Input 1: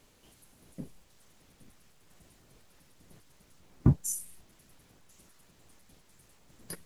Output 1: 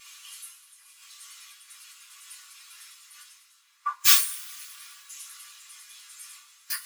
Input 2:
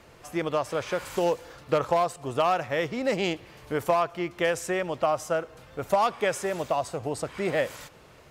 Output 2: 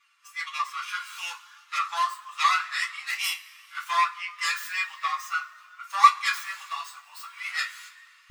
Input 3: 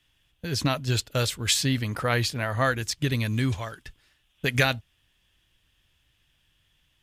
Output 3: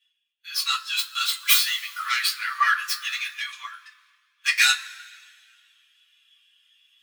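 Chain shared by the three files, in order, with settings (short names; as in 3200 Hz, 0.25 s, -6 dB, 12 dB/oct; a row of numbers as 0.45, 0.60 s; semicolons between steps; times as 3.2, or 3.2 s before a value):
tracing distortion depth 0.2 ms; reverse; upward compressor, threshold -42 dBFS; reverse; elliptic high-pass 1100 Hz, stop band 70 dB; high shelf 2800 Hz +5.5 dB; two-slope reverb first 0.2 s, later 2.9 s, from -20 dB, DRR -6.5 dB; spectral expander 1.5:1; normalise peaks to -3 dBFS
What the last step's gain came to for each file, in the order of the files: +9.5, +2.5, -2.0 dB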